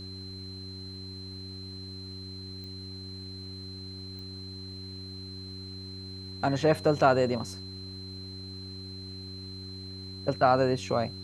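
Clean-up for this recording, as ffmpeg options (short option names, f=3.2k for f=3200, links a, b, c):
-af "adeclick=t=4,bandreject=f=94.7:t=h:w=4,bandreject=f=189.4:t=h:w=4,bandreject=f=284.1:t=h:w=4,bandreject=f=378.8:t=h:w=4,bandreject=f=4.1k:w=30,agate=range=-21dB:threshold=-33dB"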